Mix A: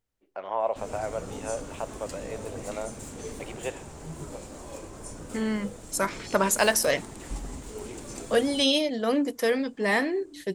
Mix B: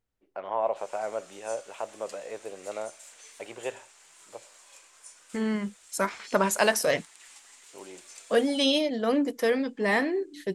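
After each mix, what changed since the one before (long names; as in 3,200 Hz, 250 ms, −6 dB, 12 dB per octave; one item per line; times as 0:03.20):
background: add flat-topped band-pass 5,900 Hz, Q 0.52
master: add high-shelf EQ 4,400 Hz −5.5 dB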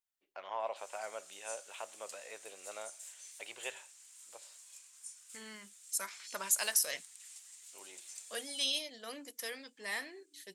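first voice +9.0 dB
master: add first-order pre-emphasis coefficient 0.97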